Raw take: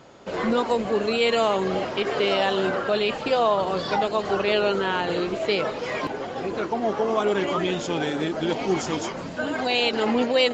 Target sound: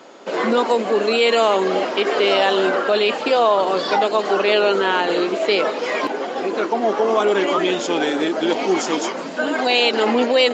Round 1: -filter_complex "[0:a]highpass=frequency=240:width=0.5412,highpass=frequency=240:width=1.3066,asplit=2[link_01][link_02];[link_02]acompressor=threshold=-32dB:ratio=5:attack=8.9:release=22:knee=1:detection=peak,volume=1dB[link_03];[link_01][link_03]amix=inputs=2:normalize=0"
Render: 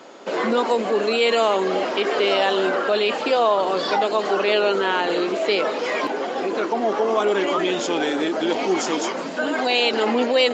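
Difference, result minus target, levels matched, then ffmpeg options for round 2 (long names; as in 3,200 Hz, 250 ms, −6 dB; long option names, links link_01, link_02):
downward compressor: peak gain reduction +7 dB
-filter_complex "[0:a]highpass=frequency=240:width=0.5412,highpass=frequency=240:width=1.3066,asplit=2[link_01][link_02];[link_02]acompressor=threshold=-23dB:ratio=5:attack=8.9:release=22:knee=1:detection=peak,volume=1dB[link_03];[link_01][link_03]amix=inputs=2:normalize=0"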